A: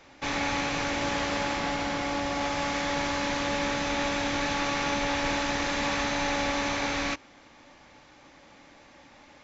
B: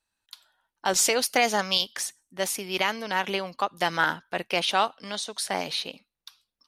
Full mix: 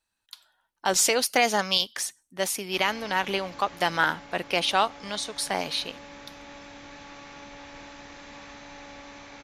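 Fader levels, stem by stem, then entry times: −16.5, +0.5 decibels; 2.50, 0.00 seconds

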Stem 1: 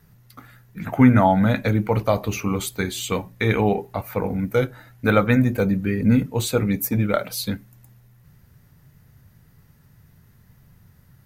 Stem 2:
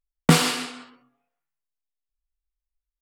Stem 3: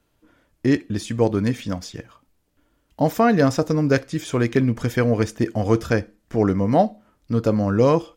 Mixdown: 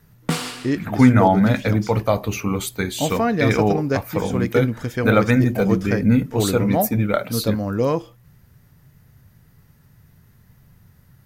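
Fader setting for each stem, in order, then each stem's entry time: +1.0, −6.5, −3.5 decibels; 0.00, 0.00, 0.00 seconds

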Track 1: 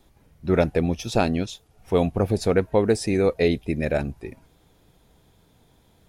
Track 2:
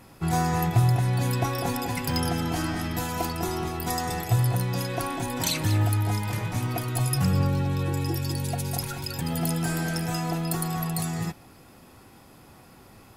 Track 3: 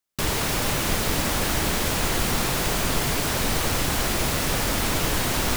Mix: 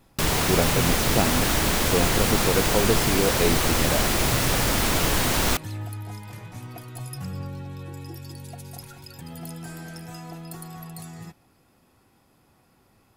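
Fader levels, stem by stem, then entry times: −4.0, −10.5, +1.5 decibels; 0.00, 0.00, 0.00 seconds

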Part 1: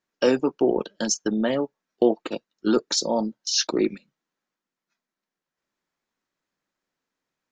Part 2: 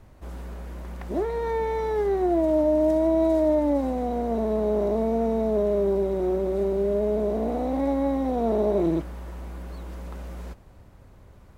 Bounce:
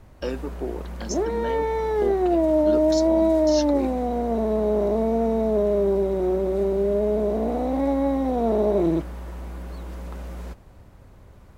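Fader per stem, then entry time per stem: −10.0, +2.0 decibels; 0.00, 0.00 seconds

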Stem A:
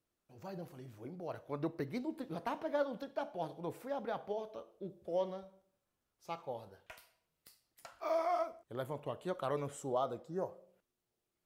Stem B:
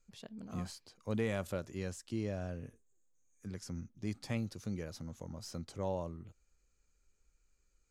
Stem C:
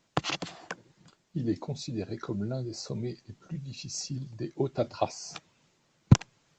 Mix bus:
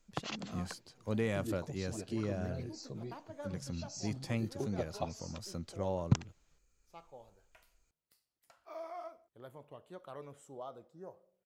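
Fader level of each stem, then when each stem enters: −11.0, +1.0, −10.0 decibels; 0.65, 0.00, 0.00 seconds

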